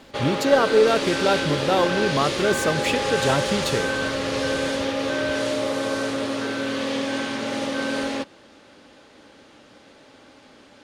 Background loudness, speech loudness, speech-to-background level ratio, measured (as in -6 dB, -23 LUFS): -25.0 LUFS, -22.5 LUFS, 2.5 dB